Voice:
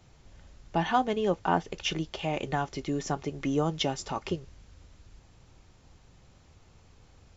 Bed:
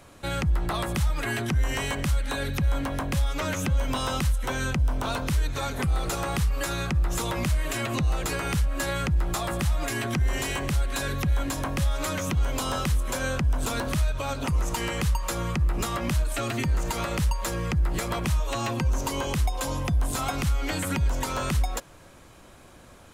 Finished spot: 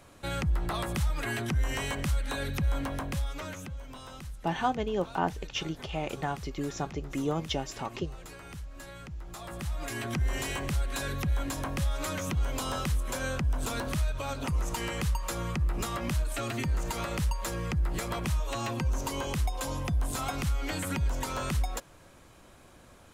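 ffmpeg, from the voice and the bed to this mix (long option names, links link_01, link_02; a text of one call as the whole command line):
ffmpeg -i stem1.wav -i stem2.wav -filter_complex "[0:a]adelay=3700,volume=-3dB[link_01];[1:a]volume=9dB,afade=type=out:start_time=2.86:duration=0.92:silence=0.211349,afade=type=in:start_time=9.24:duration=0.98:silence=0.223872[link_02];[link_01][link_02]amix=inputs=2:normalize=0" out.wav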